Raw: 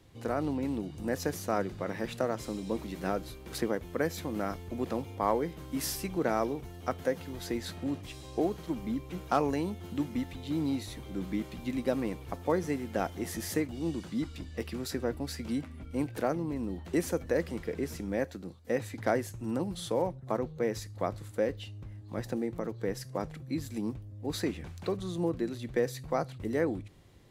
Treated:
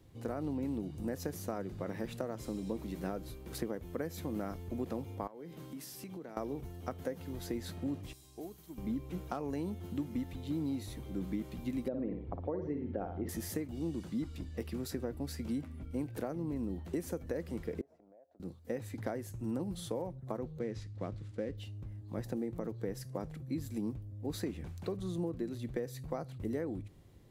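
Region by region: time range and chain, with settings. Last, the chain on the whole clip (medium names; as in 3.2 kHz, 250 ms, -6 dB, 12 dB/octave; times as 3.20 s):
5.27–6.37 s: high-pass 120 Hz 24 dB/octave + peaking EQ 3.6 kHz +3 dB 1.7 oct + compression 8:1, threshold -40 dBFS
8.13–8.78 s: pre-emphasis filter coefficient 0.8 + band-stop 520 Hz, Q 8
11.88–13.29 s: resonances exaggerated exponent 1.5 + low-pass 4 kHz 24 dB/octave + flutter echo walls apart 9.7 m, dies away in 0.46 s
17.81–18.40 s: band-pass filter 660 Hz, Q 6.9 + compression, threshold -55 dBFS
20.59–21.58 s: CVSD coder 64 kbps + low-pass 4.1 kHz + peaking EQ 830 Hz -7 dB 1.6 oct
whole clip: treble shelf 10 kHz +9 dB; compression 10:1, threshold -30 dBFS; tilt shelf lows +4 dB, about 670 Hz; trim -4 dB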